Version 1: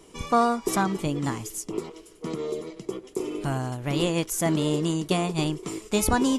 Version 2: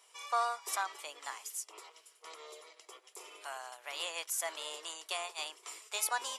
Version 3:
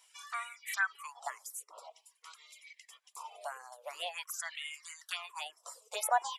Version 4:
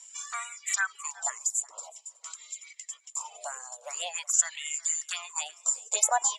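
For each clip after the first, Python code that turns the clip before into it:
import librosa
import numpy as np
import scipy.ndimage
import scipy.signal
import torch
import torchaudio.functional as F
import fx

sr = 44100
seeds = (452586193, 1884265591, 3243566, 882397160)

y1 = scipy.signal.sosfilt(scipy.signal.bessel(6, 1000.0, 'highpass', norm='mag', fs=sr, output='sos'), x)
y1 = fx.notch(y1, sr, hz=6500.0, q=26.0)
y1 = y1 * librosa.db_to_amplitude(-5.5)
y2 = fx.env_phaser(y1, sr, low_hz=190.0, high_hz=4800.0, full_db=-30.0)
y2 = fx.filter_lfo_highpass(y2, sr, shape='sine', hz=0.47, low_hz=500.0, high_hz=2200.0, q=7.9)
y2 = fx.dereverb_blind(y2, sr, rt60_s=1.0)
y3 = fx.lowpass_res(y2, sr, hz=7200.0, q=15.0)
y3 = y3 + 10.0 ** (-21.5 / 20.0) * np.pad(y3, (int(370 * sr / 1000.0), 0))[:len(y3)]
y3 = y3 * librosa.db_to_amplitude(2.0)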